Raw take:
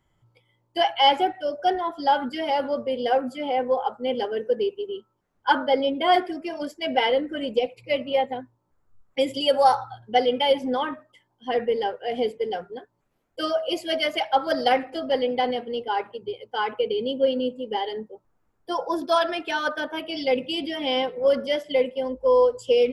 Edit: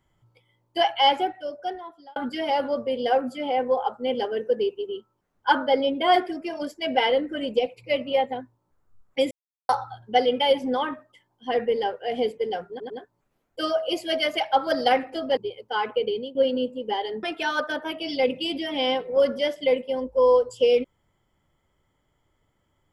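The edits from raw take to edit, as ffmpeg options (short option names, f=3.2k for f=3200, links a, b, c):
-filter_complex "[0:a]asplit=9[a][b][c][d][e][f][g][h][i];[a]atrim=end=2.16,asetpts=PTS-STARTPTS,afade=t=out:st=0.89:d=1.27[j];[b]atrim=start=2.16:end=9.31,asetpts=PTS-STARTPTS,afade=t=in:d=0.004:c=hsin,afade=t=out:st=7.146:d=0.004:c=hsin[k];[c]atrim=start=9.31:end=9.69,asetpts=PTS-STARTPTS,volume=0[l];[d]atrim=start=9.69:end=12.802,asetpts=PTS-STARTPTS,afade=t=in:d=0.004:c=hsin[m];[e]atrim=start=12.698:end=12.802[n];[f]atrim=start=12.698:end=15.172[o];[g]atrim=start=16.198:end=17.18,asetpts=PTS-STARTPTS,afade=t=out:st=0.722:d=0.26:silence=0.112202[p];[h]atrim=start=17.18:end=18.062,asetpts=PTS-STARTPTS,afade=t=in:d=0.004:c=hsin:silence=0.112202[q];[i]atrim=start=19.308[r];[j][k][l][m]concat=n=4:v=0:a=1[s];[s][n]acrossfade=d=0.004:c1=hsin:c2=hsin[t];[t][o]acrossfade=d=0.004:c1=hsin:c2=hsin[u];[p][q]concat=n=2:v=0:a=1[v];[u][v]acrossfade=d=0.004:c1=hsin:c2=hsin[w];[w][r]acrossfade=d=0.004:c1=hsin:c2=hsin"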